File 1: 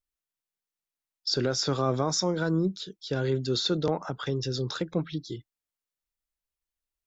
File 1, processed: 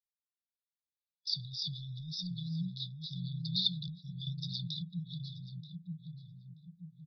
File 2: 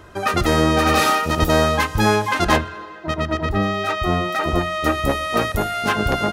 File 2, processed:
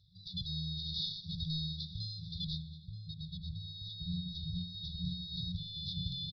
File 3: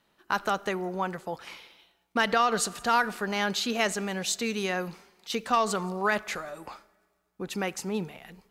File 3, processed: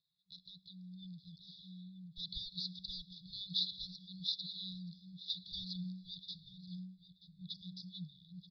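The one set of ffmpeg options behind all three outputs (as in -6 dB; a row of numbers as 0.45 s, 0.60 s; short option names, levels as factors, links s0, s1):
-filter_complex "[0:a]asplit=2[s0][s1];[s1]adelay=931,lowpass=f=800:p=1,volume=0.708,asplit=2[s2][s3];[s3]adelay=931,lowpass=f=800:p=1,volume=0.48,asplit=2[s4][s5];[s5]adelay=931,lowpass=f=800:p=1,volume=0.48,asplit=2[s6][s7];[s7]adelay=931,lowpass=f=800:p=1,volume=0.48,asplit=2[s8][s9];[s9]adelay=931,lowpass=f=800:p=1,volume=0.48,asplit=2[s10][s11];[s11]adelay=931,lowpass=f=800:p=1,volume=0.48[s12];[s2][s4][s6][s8][s10][s12]amix=inputs=6:normalize=0[s13];[s0][s13]amix=inputs=2:normalize=0,dynaudnorm=f=270:g=7:m=2.24,asplit=3[s14][s15][s16];[s14]bandpass=f=730:t=q:w=8,volume=1[s17];[s15]bandpass=f=1090:t=q:w=8,volume=0.501[s18];[s16]bandpass=f=2440:t=q:w=8,volume=0.355[s19];[s17][s18][s19]amix=inputs=3:normalize=0,aresample=16000,asoftclip=type=tanh:threshold=0.211,aresample=44100,aresample=11025,aresample=44100,afftfilt=real='re*(1-between(b*sr/4096,190,3400))':imag='im*(1-between(b*sr/4096,190,3400))':win_size=4096:overlap=0.75,volume=4.47"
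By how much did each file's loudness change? -9.5 LU, -20.5 LU, -14.5 LU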